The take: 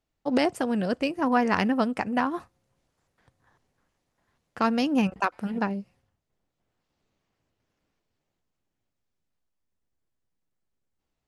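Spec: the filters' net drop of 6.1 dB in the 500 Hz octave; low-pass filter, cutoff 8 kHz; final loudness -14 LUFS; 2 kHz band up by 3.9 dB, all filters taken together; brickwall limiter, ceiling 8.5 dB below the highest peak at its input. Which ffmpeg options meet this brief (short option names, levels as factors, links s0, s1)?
-af "lowpass=8000,equalizer=f=500:t=o:g=-8,equalizer=f=2000:t=o:g=5.5,volume=5.01,alimiter=limit=0.944:level=0:latency=1"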